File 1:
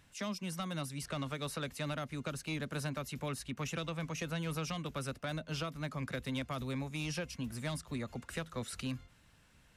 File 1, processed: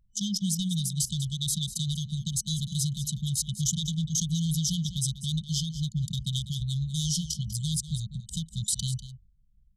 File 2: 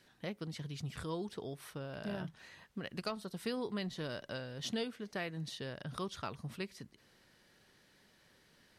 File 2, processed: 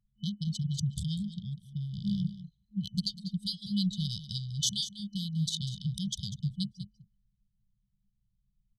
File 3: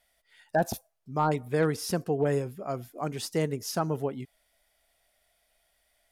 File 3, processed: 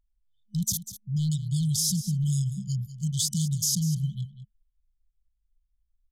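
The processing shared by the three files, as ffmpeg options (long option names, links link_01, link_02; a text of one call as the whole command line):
ffmpeg -i in.wav -filter_complex "[0:a]acontrast=38,anlmdn=0.631,afftfilt=real='re*(1-between(b*sr/4096,210,3000))':imag='im*(1-between(b*sr/4096,210,3000))':win_size=4096:overlap=0.75,alimiter=level_in=4dB:limit=-24dB:level=0:latency=1:release=104,volume=-4dB,superequalizer=9b=3.16:12b=3.98:15b=2,asplit=2[link_01][link_02];[link_02]aecho=0:1:196:0.211[link_03];[link_01][link_03]amix=inputs=2:normalize=0,adynamicequalizer=threshold=0.002:dfrequency=3200:dqfactor=0.7:tfrequency=3200:tqfactor=0.7:attack=5:release=100:ratio=0.375:range=2:mode=boostabove:tftype=highshelf,volume=6.5dB" out.wav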